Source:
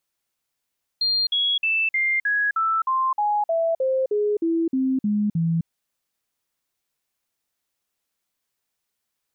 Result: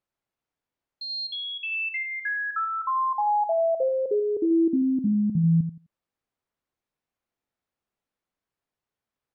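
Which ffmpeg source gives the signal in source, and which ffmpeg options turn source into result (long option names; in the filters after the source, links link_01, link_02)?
-f lavfi -i "aevalsrc='0.119*clip(min(mod(t,0.31),0.26-mod(t,0.31))/0.005,0,1)*sin(2*PI*4200*pow(2,-floor(t/0.31)/3)*mod(t,0.31))':duration=4.65:sample_rate=44100"
-filter_complex "[0:a]lowpass=frequency=1000:poles=1,asplit=2[link_01][link_02];[link_02]aecho=0:1:85|170|255:0.376|0.0752|0.015[link_03];[link_01][link_03]amix=inputs=2:normalize=0"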